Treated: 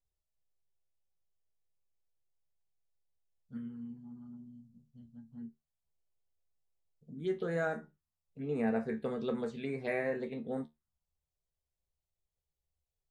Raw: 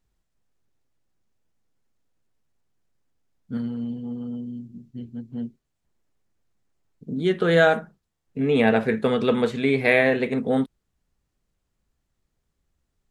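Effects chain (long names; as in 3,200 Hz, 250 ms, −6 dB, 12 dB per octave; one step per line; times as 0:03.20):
phaser swept by the level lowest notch 250 Hz, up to 3,300 Hz, full sweep at −17 dBFS
tuned comb filter 76 Hz, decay 0.19 s, harmonics all, mix 80%
level −8.5 dB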